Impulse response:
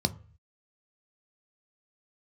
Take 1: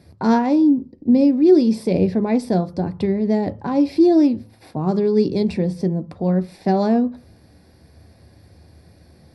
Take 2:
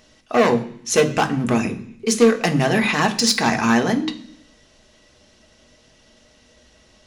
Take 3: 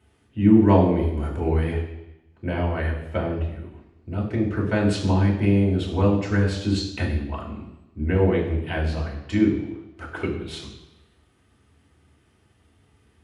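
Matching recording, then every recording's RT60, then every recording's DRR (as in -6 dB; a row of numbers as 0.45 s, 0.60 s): 1; 0.40 s, 0.60 s, 0.90 s; 9.5 dB, 4.5 dB, -3.0 dB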